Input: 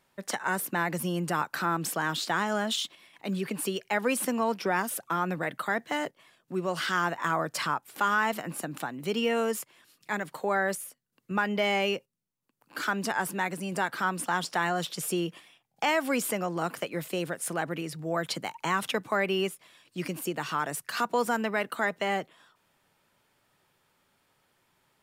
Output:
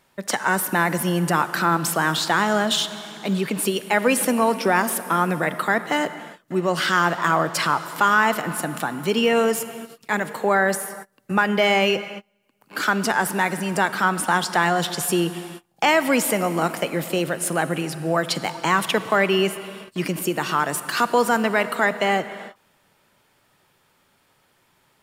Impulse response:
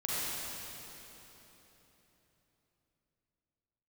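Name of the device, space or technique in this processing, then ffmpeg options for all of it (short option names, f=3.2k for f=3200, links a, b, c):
keyed gated reverb: -filter_complex "[0:a]asplit=3[a][b][c];[1:a]atrim=start_sample=2205[d];[b][d]afir=irnorm=-1:irlink=0[e];[c]apad=whole_len=1103660[f];[e][f]sidechaingate=range=-31dB:threshold=-59dB:ratio=16:detection=peak,volume=-18dB[g];[a][g]amix=inputs=2:normalize=0,volume=7.5dB"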